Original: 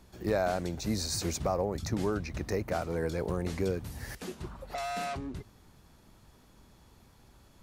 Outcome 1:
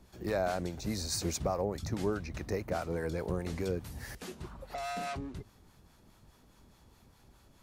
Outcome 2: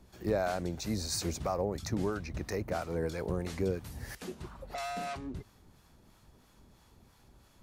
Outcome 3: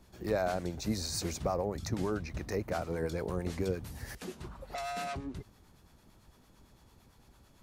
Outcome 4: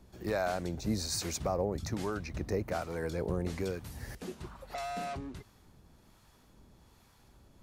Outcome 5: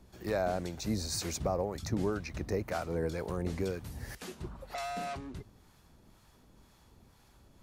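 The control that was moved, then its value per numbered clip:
harmonic tremolo, rate: 4.8 Hz, 3 Hz, 8.9 Hz, 1.2 Hz, 2 Hz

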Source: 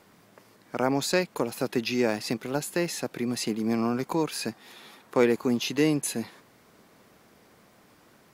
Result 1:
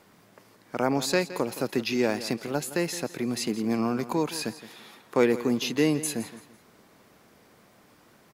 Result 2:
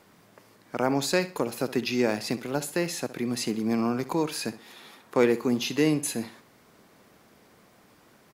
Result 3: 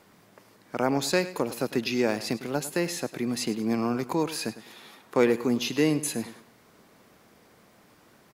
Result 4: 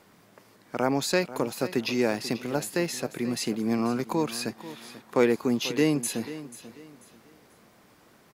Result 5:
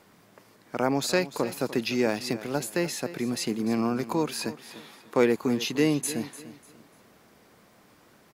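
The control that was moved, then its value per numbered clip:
feedback delay, time: 167 ms, 65 ms, 103 ms, 489 ms, 297 ms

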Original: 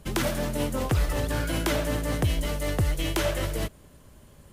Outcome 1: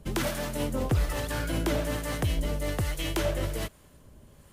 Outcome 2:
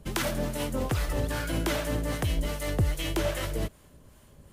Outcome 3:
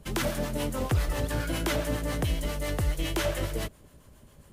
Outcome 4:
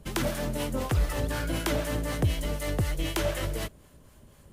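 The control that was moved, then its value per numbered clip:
harmonic tremolo, rate: 1.2 Hz, 2.5 Hz, 7.3 Hz, 4 Hz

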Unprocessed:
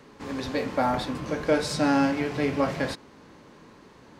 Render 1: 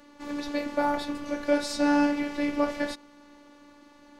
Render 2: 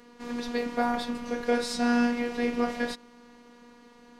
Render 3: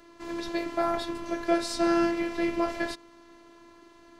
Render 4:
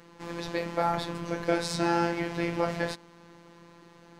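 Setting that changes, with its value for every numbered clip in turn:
robot voice, frequency: 290 Hz, 240 Hz, 340 Hz, 170 Hz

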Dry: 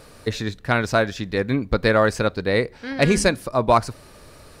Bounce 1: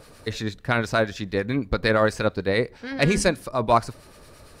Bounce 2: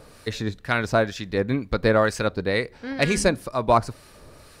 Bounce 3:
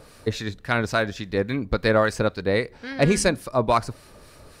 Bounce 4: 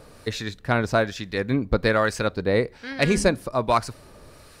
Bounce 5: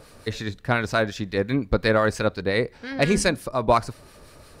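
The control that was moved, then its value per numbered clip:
harmonic tremolo, rate: 8.8 Hz, 2.1 Hz, 3.6 Hz, 1.2 Hz, 5.7 Hz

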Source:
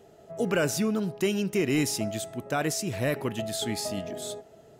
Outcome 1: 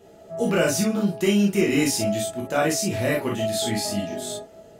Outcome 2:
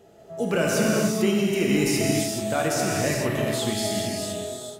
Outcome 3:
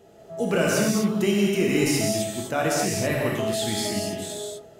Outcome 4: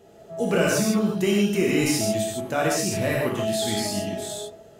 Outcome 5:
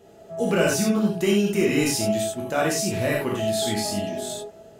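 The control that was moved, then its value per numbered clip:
gated-style reverb, gate: 80 ms, 470 ms, 280 ms, 180 ms, 120 ms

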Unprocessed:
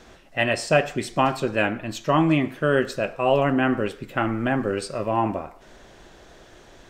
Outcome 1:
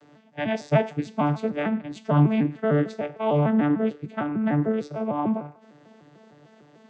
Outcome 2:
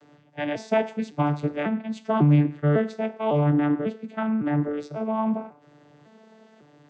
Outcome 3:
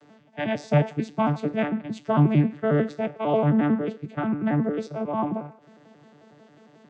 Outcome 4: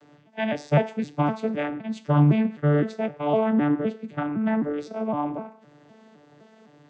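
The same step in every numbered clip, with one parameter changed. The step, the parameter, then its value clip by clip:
vocoder on a broken chord, a note every: 150 ms, 550 ms, 90 ms, 256 ms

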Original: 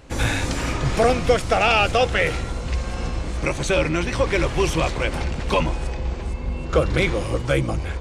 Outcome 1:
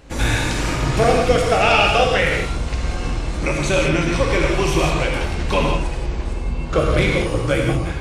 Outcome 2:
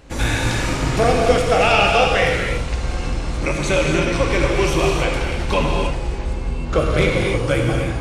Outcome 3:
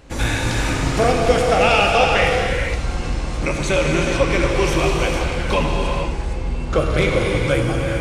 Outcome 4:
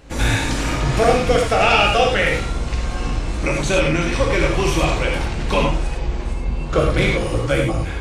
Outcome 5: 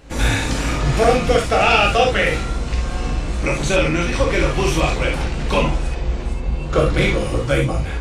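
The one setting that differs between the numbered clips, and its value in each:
gated-style reverb, gate: 210 ms, 330 ms, 510 ms, 130 ms, 90 ms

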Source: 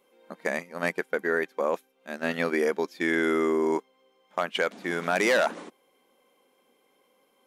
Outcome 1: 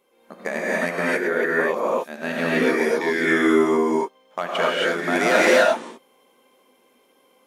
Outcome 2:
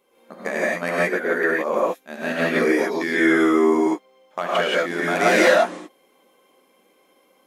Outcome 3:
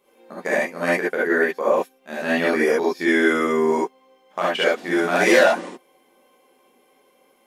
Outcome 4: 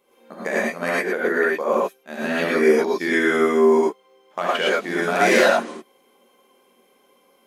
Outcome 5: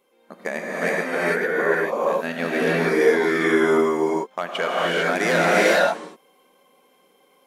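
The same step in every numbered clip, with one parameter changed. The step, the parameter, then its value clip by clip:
gated-style reverb, gate: 300 ms, 200 ms, 90 ms, 140 ms, 480 ms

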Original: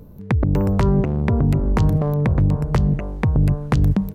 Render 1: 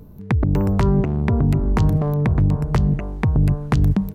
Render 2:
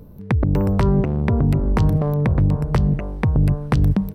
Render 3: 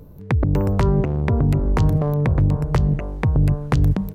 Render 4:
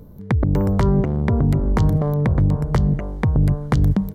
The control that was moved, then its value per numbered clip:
band-stop, frequency: 530 Hz, 6.8 kHz, 210 Hz, 2.6 kHz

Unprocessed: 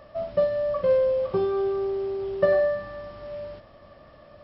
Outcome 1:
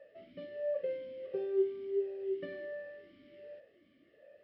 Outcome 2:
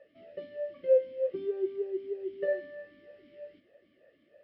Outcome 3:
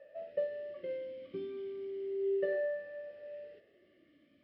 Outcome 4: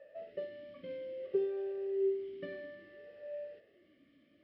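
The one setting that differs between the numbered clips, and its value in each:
talking filter, rate: 1.4 Hz, 3.2 Hz, 0.33 Hz, 0.6 Hz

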